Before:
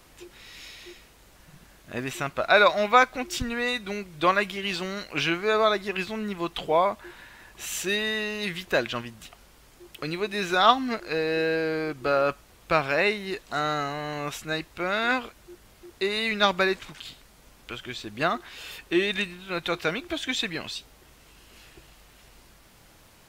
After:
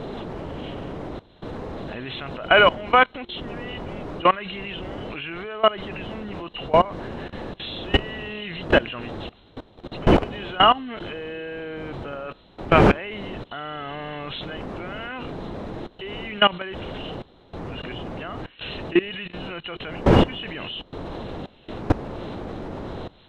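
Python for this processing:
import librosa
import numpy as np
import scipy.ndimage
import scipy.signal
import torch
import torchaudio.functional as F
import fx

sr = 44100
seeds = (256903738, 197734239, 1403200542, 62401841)

y = fx.freq_compress(x, sr, knee_hz=2700.0, ratio=4.0)
y = fx.dmg_wind(y, sr, seeds[0], corner_hz=500.0, level_db=-29.0)
y = fx.level_steps(y, sr, step_db=20)
y = F.gain(torch.from_numpy(y), 7.0).numpy()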